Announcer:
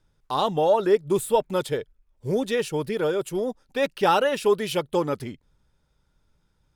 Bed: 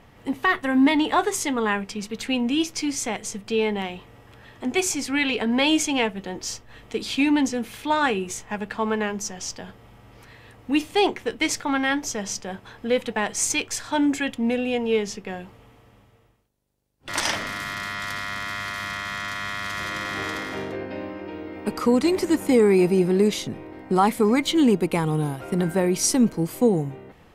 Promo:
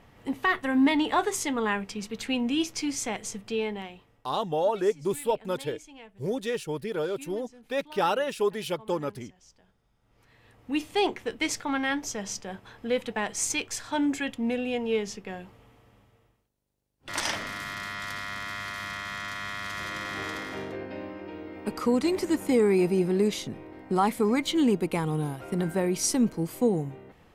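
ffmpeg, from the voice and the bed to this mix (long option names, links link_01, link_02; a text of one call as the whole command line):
ffmpeg -i stem1.wav -i stem2.wav -filter_complex "[0:a]adelay=3950,volume=-5.5dB[link_01];[1:a]volume=16.5dB,afade=type=out:start_time=3.31:duration=0.99:silence=0.0841395,afade=type=in:start_time=10:duration=0.95:silence=0.0944061[link_02];[link_01][link_02]amix=inputs=2:normalize=0" out.wav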